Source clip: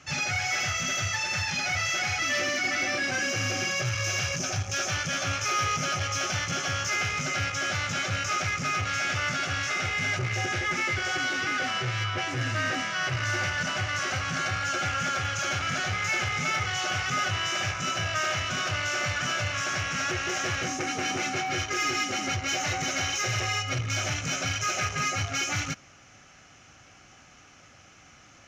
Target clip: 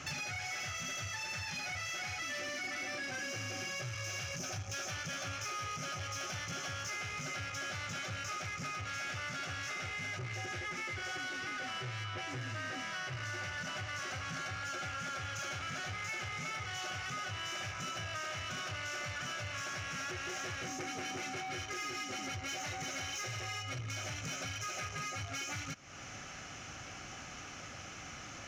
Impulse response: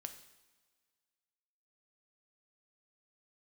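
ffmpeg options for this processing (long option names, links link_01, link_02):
-af "acompressor=threshold=-43dB:ratio=10,asoftclip=type=tanh:threshold=-39.5dB,volume=6.5dB"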